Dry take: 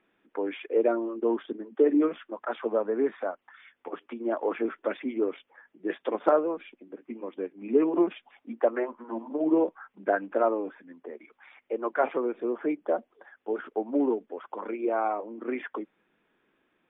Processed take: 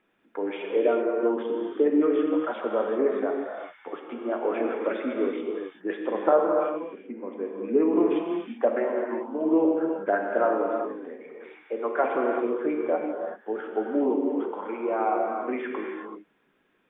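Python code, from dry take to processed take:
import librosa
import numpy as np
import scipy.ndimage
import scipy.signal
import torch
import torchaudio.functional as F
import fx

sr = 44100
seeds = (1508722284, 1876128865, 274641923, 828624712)

y = fx.lowpass(x, sr, hz=2200.0, slope=12, at=(5.97, 7.87))
y = fx.rev_gated(y, sr, seeds[0], gate_ms=410, shape='flat', drr_db=0.0)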